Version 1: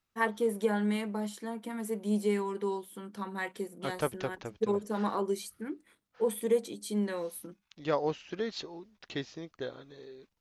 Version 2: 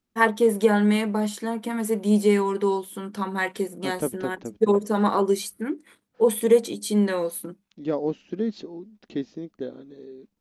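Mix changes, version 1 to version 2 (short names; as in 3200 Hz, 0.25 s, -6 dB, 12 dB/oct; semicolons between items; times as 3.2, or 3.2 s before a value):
first voice +10.0 dB; second voice: add EQ curve 140 Hz 0 dB, 210 Hz +14 dB, 1100 Hz -6 dB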